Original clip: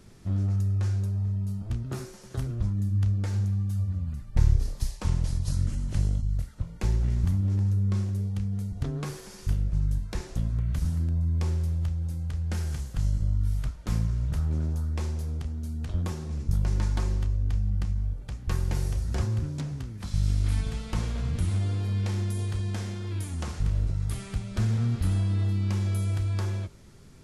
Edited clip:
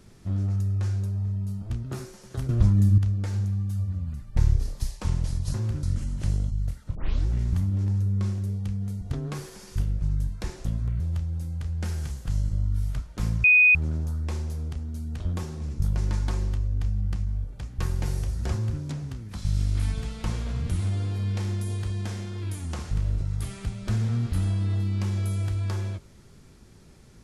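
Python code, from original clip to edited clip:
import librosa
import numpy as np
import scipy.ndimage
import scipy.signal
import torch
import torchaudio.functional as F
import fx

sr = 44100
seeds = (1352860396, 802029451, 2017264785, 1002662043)

y = fx.edit(x, sr, fx.clip_gain(start_s=2.49, length_s=0.49, db=8.5),
    fx.tape_start(start_s=6.66, length_s=0.33),
    fx.cut(start_s=10.71, length_s=0.98),
    fx.bleep(start_s=14.13, length_s=0.31, hz=2490.0, db=-13.0),
    fx.duplicate(start_s=19.22, length_s=0.29, to_s=5.54), tone=tone)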